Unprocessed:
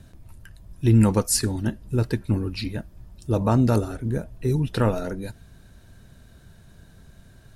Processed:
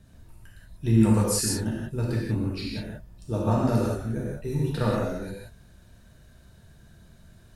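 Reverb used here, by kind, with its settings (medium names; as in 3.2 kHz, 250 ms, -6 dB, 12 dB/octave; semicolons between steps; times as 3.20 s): gated-style reverb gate 210 ms flat, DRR -5 dB; trim -8.5 dB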